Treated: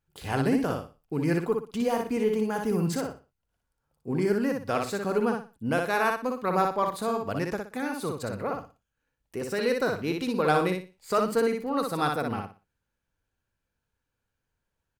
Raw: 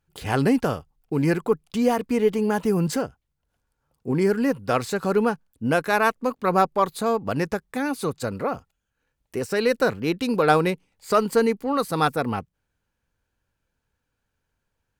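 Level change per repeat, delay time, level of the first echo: −11.5 dB, 60 ms, −4.0 dB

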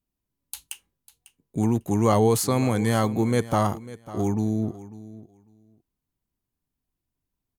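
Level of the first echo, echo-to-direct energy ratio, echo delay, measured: −17.0 dB, −17.0 dB, 548 ms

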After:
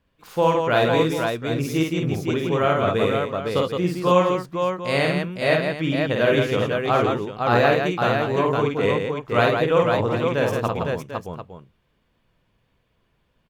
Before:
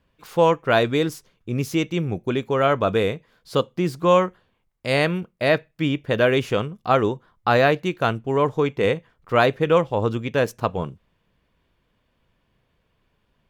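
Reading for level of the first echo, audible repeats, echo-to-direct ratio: −3.0 dB, 4, 1.5 dB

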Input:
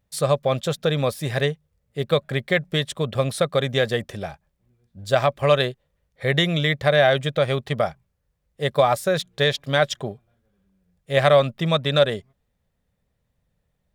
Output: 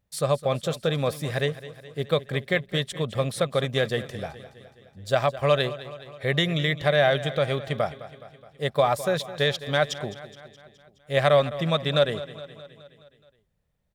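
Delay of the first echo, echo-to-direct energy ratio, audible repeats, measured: 210 ms, −13.5 dB, 5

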